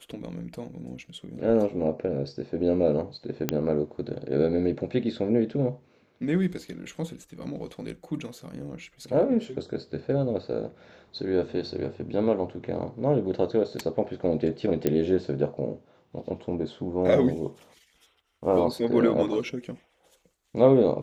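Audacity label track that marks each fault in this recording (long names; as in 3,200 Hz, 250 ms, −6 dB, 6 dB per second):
3.490000	3.490000	click −9 dBFS
14.870000	14.870000	click −11 dBFS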